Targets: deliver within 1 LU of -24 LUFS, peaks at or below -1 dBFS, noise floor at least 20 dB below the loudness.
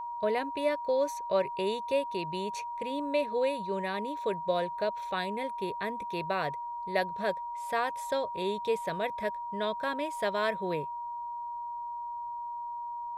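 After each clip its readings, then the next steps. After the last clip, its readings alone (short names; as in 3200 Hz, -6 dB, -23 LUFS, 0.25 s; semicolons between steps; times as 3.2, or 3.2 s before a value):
steady tone 950 Hz; tone level -35 dBFS; loudness -32.5 LUFS; peak -16.0 dBFS; loudness target -24.0 LUFS
-> notch 950 Hz, Q 30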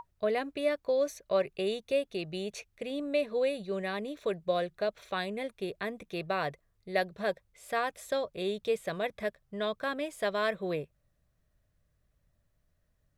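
steady tone none; loudness -33.5 LUFS; peak -16.5 dBFS; loudness target -24.0 LUFS
-> gain +9.5 dB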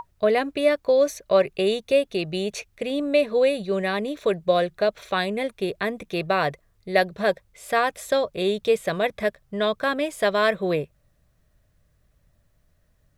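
loudness -24.0 LUFS; peak -7.0 dBFS; noise floor -65 dBFS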